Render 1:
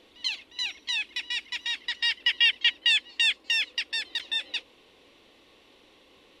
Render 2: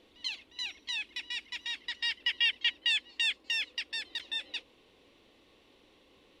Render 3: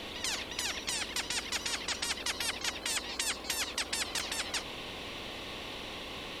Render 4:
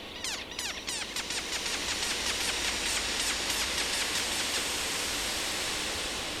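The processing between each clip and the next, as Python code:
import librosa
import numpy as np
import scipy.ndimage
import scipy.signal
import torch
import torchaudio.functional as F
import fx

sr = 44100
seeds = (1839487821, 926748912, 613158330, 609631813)

y1 = fx.low_shelf(x, sr, hz=370.0, db=5.5)
y1 = y1 * librosa.db_to_amplitude(-6.5)
y2 = fx.spectral_comp(y1, sr, ratio=10.0)
y3 = fx.rev_bloom(y2, sr, seeds[0], attack_ms=1740, drr_db=-3.0)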